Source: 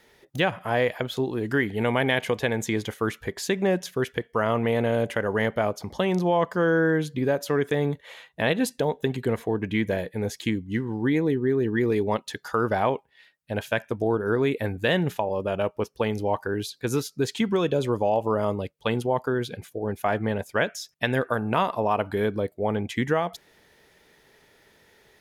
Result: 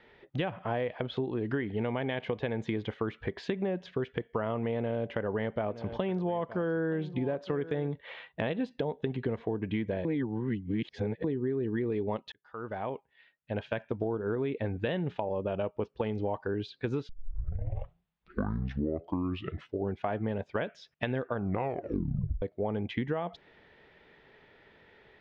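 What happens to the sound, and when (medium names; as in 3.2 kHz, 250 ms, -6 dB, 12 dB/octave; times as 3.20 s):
4.77–7.88 s: delay 920 ms -17.5 dB
10.05–11.24 s: reverse
12.32–14.07 s: fade in
17.09 s: tape start 2.97 s
21.36 s: tape stop 1.06 s
whole clip: low-pass 3.3 kHz 24 dB/octave; dynamic bell 1.8 kHz, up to -6 dB, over -40 dBFS, Q 0.75; compression, threshold -28 dBFS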